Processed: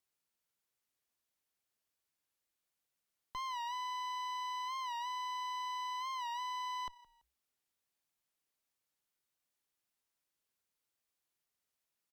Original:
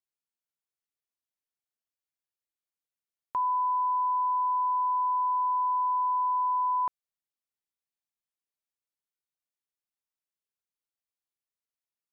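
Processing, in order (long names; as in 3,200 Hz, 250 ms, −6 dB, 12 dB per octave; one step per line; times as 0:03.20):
brickwall limiter −35 dBFS, peak gain reduction 11.5 dB
asymmetric clip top −55.5 dBFS, bottom −40.5 dBFS
echo with shifted repeats 167 ms, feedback 32%, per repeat −32 Hz, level −21 dB
wow of a warped record 45 rpm, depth 100 cents
level +6 dB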